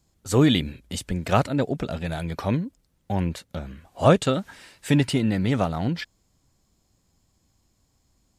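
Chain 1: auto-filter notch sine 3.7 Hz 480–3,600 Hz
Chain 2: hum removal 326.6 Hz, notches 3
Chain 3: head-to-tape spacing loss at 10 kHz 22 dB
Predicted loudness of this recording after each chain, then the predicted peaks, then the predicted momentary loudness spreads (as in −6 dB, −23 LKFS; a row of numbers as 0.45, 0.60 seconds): −24.5, −24.5, −25.0 LKFS; −5.0, −4.0, −5.5 dBFS; 17, 17, 17 LU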